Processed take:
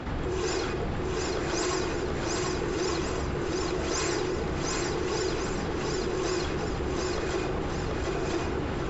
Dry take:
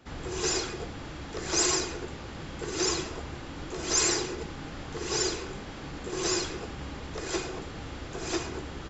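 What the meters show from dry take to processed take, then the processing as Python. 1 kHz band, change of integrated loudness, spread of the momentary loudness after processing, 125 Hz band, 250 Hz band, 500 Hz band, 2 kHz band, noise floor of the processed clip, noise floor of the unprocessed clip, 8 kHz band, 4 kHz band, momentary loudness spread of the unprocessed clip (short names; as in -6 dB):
+5.0 dB, +1.5 dB, 3 LU, +7.0 dB, +5.5 dB, +5.5 dB, +2.5 dB, -31 dBFS, -41 dBFS, n/a, -3.0 dB, 15 LU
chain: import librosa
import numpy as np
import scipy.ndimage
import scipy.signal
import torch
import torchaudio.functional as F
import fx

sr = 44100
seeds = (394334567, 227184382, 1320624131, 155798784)

y = fx.lowpass(x, sr, hz=1700.0, slope=6)
y = fx.echo_feedback(y, sr, ms=732, feedback_pct=30, wet_db=-4.0)
y = fx.env_flatten(y, sr, amount_pct=70)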